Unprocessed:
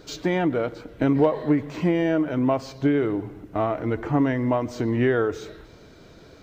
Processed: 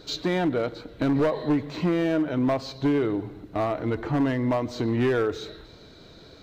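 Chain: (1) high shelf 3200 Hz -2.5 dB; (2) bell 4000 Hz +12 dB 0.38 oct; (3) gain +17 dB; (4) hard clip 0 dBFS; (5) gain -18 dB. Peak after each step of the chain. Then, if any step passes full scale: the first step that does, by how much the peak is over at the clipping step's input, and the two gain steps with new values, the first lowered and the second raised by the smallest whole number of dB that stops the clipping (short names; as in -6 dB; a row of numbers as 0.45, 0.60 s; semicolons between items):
-7.5, -7.5, +9.5, 0.0, -18.0 dBFS; step 3, 9.5 dB; step 3 +7 dB, step 5 -8 dB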